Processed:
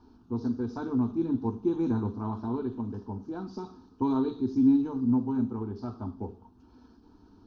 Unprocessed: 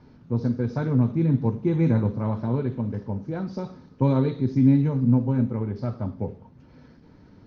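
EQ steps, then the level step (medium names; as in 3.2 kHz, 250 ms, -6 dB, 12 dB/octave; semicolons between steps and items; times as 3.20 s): static phaser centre 550 Hz, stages 6; -1.5 dB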